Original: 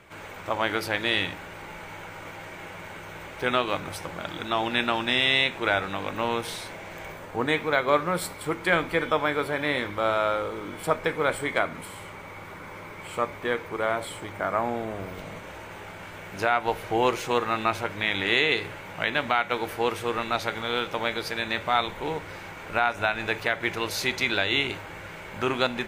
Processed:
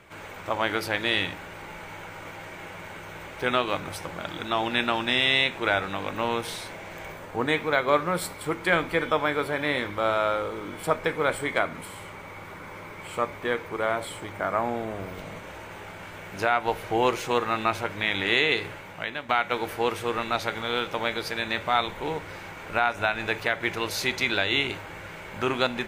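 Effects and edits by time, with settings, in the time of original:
0:18.68–0:19.29: fade out, to −12 dB

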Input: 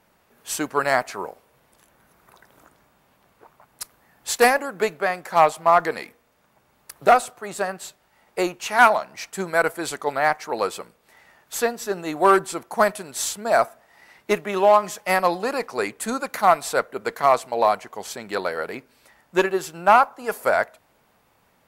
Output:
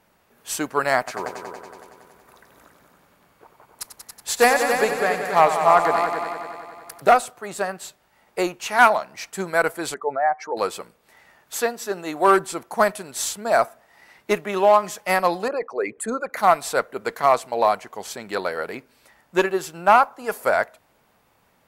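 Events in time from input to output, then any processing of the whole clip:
0:00.98–0:07.02: echo machine with several playback heads 93 ms, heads all three, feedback 55%, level −10.5 dB
0:09.94–0:10.57: expanding power law on the bin magnitudes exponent 2
0:11.55–0:12.28: low-shelf EQ 140 Hz −9 dB
0:15.48–0:16.37: spectral envelope exaggerated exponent 2

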